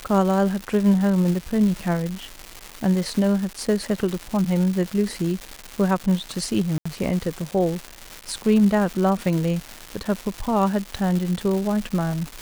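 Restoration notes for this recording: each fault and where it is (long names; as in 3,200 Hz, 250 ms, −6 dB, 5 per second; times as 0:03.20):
surface crackle 440 per second −26 dBFS
0:06.78–0:06.86: drop-out 75 ms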